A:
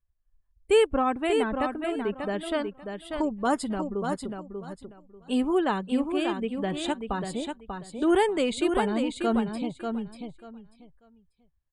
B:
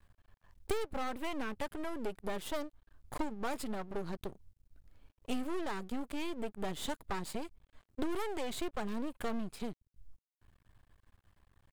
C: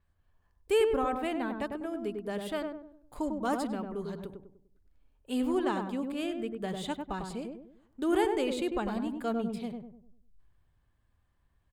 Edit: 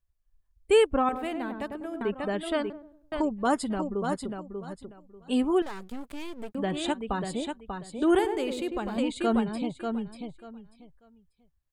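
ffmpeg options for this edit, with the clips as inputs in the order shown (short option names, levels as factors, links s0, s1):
-filter_complex "[2:a]asplit=3[s0][s1][s2];[0:a]asplit=5[s3][s4][s5][s6][s7];[s3]atrim=end=1.092[s8];[s0]atrim=start=1.088:end=2.012[s9];[s4]atrim=start=2.008:end=2.702[s10];[s1]atrim=start=2.698:end=3.122[s11];[s5]atrim=start=3.118:end=5.622[s12];[1:a]atrim=start=5.618:end=6.552[s13];[s6]atrim=start=6.548:end=8.192[s14];[s2]atrim=start=8.188:end=8.982[s15];[s7]atrim=start=8.978[s16];[s8][s9]acrossfade=d=0.004:c1=hsin:c2=hsin[s17];[s17][s10]acrossfade=d=0.004:c1=hsin:c2=hsin[s18];[s18][s11]acrossfade=d=0.004:c1=hsin:c2=hsin[s19];[s19][s12]acrossfade=d=0.004:c1=hsin:c2=hsin[s20];[s20][s13]acrossfade=d=0.004:c1=hsin:c2=hsin[s21];[s21][s14]acrossfade=d=0.004:c1=hsin:c2=hsin[s22];[s22][s15]acrossfade=d=0.004:c1=hsin:c2=hsin[s23];[s23][s16]acrossfade=d=0.004:c1=hsin:c2=hsin"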